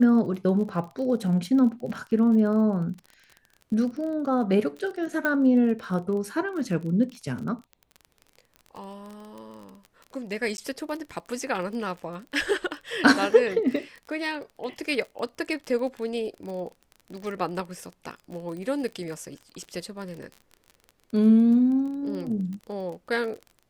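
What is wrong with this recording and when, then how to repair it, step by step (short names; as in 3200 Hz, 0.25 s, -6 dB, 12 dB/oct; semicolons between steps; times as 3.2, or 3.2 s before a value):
crackle 27/s -34 dBFS
5.25 pop -14 dBFS
10.57–10.58 gap 11 ms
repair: de-click; interpolate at 10.57, 11 ms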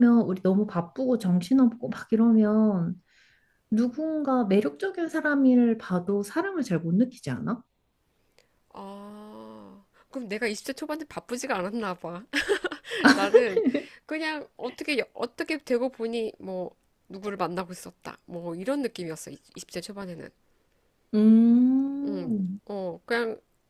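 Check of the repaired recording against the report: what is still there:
none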